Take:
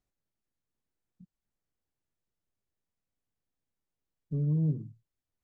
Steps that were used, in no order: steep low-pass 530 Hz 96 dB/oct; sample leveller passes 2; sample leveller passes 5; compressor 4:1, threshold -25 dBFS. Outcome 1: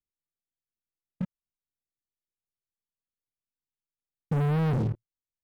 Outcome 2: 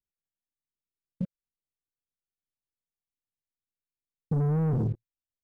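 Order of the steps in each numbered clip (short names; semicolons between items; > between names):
first sample leveller > steep low-pass > second sample leveller > compressor; second sample leveller > steep low-pass > first sample leveller > compressor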